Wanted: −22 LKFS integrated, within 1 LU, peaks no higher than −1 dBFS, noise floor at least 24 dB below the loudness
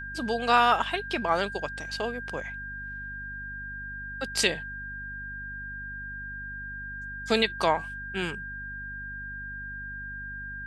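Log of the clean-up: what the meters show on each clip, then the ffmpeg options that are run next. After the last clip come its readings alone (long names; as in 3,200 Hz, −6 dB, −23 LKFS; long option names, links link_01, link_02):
mains hum 50 Hz; hum harmonics up to 250 Hz; level of the hum −41 dBFS; interfering tone 1,600 Hz; level of the tone −36 dBFS; integrated loudness −30.5 LKFS; sample peak −7.5 dBFS; target loudness −22.0 LKFS
→ -af "bandreject=frequency=50:width_type=h:width=6,bandreject=frequency=100:width_type=h:width=6,bandreject=frequency=150:width_type=h:width=6,bandreject=frequency=200:width_type=h:width=6,bandreject=frequency=250:width_type=h:width=6"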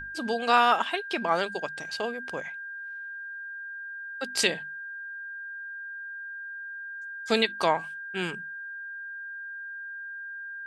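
mains hum none found; interfering tone 1,600 Hz; level of the tone −36 dBFS
→ -af "bandreject=frequency=1600:width=30"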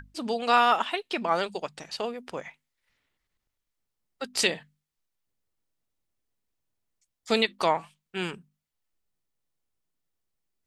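interfering tone none found; integrated loudness −27.0 LKFS; sample peak −7.5 dBFS; target loudness −22.0 LKFS
→ -af "volume=5dB"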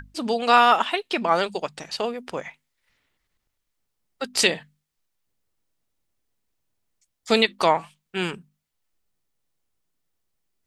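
integrated loudness −22.0 LKFS; sample peak −2.5 dBFS; background noise floor −79 dBFS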